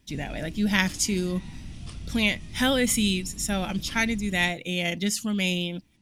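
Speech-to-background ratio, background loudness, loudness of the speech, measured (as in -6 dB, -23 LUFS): 15.5 dB, -41.5 LUFS, -26.0 LUFS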